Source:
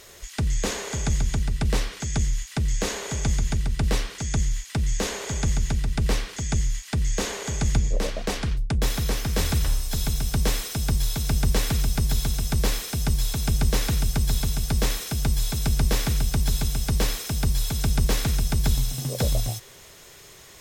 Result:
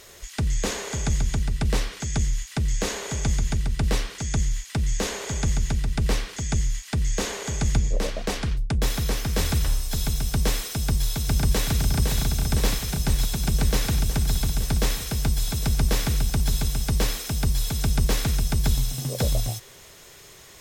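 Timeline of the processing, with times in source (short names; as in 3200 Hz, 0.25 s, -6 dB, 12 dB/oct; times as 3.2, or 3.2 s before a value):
10.77–11.72 echo throw 0.51 s, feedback 80%, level -5 dB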